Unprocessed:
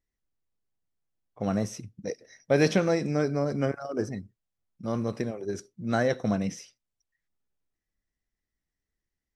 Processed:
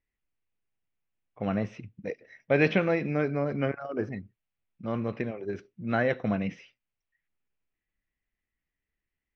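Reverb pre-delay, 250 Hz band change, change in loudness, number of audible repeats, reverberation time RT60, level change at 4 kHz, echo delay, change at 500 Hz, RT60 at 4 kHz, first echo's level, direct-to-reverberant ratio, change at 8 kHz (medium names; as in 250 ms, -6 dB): no reverb, -1.5 dB, -1.0 dB, no echo, no reverb, -4.5 dB, no echo, -1.5 dB, no reverb, no echo, no reverb, under -20 dB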